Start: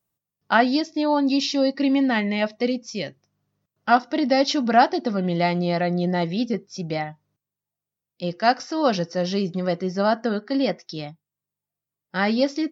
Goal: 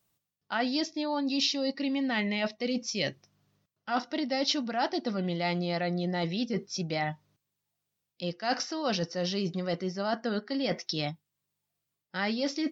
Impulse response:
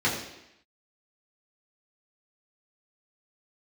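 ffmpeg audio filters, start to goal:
-af "areverse,acompressor=threshold=-32dB:ratio=6,areverse,equalizer=frequency=3700:width_type=o:width=1.9:gain=6,volume=3dB"

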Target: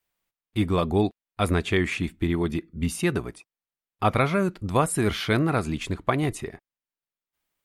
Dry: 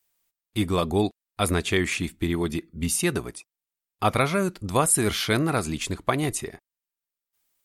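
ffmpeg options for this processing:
ffmpeg -i in.wav -af "bass=frequency=250:gain=2,treble=frequency=4000:gain=-10" out.wav

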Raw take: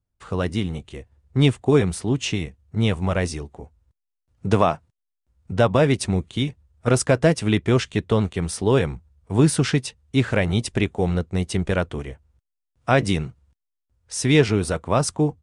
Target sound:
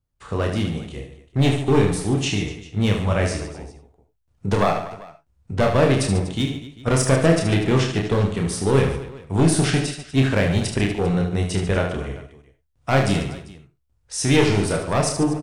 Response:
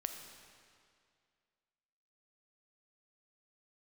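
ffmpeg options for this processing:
-filter_complex "[0:a]aeval=exprs='clip(val(0),-1,0.178)':channel_layout=same,aecho=1:1:30|75|142.5|243.8|395.6:0.631|0.398|0.251|0.158|0.1[link_01];[1:a]atrim=start_sample=2205,atrim=end_sample=4410[link_02];[link_01][link_02]afir=irnorm=-1:irlink=0,volume=1.5dB"

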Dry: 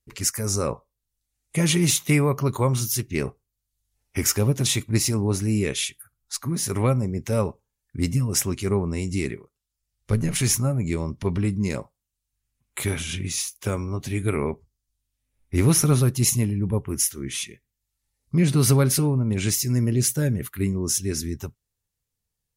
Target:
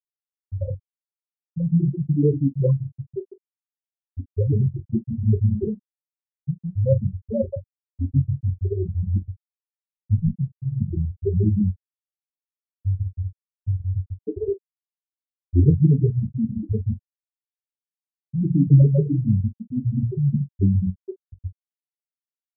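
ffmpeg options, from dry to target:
ffmpeg -i in.wav -filter_complex "[0:a]bandreject=frequency=60:width_type=h:width=6,bandreject=frequency=120:width_type=h:width=6,bandreject=frequency=180:width_type=h:width=6,bandreject=frequency=240:width_type=h:width=6,bandreject=frequency=300:width_type=h:width=6,bandreject=frequency=360:width_type=h:width=6,bandreject=frequency=420:width_type=h:width=6,bandreject=frequency=480:width_type=h:width=6,asplit=2[link_01][link_02];[link_02]aecho=0:1:144|288|432:0.631|0.126|0.0252[link_03];[link_01][link_03]amix=inputs=2:normalize=0,flanger=delay=9.4:depth=4.3:regen=28:speed=1.3:shape=sinusoidal,afftfilt=real='re*gte(hypot(re,im),0.355)':imag='im*gte(hypot(re,im),0.355)':win_size=1024:overlap=0.75,asplit=2[link_04][link_05];[link_05]aecho=0:1:22|43:0.266|0.133[link_06];[link_04][link_06]amix=inputs=2:normalize=0,afftfilt=real='re*lt(b*sr/1024,700*pow(7300/700,0.5+0.5*sin(2*PI*1.8*pts/sr)))':imag='im*lt(b*sr/1024,700*pow(7300/700,0.5+0.5*sin(2*PI*1.8*pts/sr)))':win_size=1024:overlap=0.75,volume=7dB" out.wav

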